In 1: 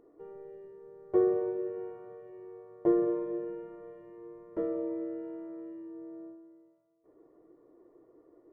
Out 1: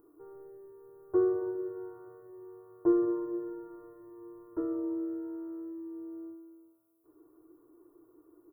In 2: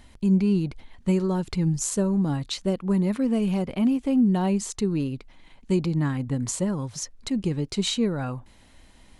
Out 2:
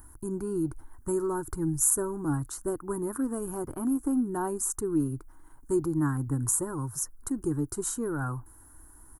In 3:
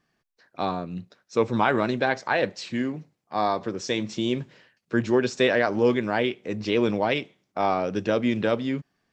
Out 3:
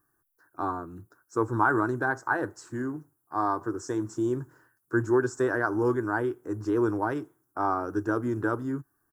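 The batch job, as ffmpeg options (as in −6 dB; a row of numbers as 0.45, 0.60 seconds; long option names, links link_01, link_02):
-af "firequalizer=gain_entry='entry(130,0);entry(190,-18);entry(310,4);entry(540,-13);entry(920,0);entry(1500,3);entry(2200,-27);entry(5800,-21);entry(11000,-2)':delay=0.05:min_phase=1,aexciter=amount=4.3:drive=8.4:freq=5500"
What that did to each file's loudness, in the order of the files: −0.5, −4.5, −3.5 LU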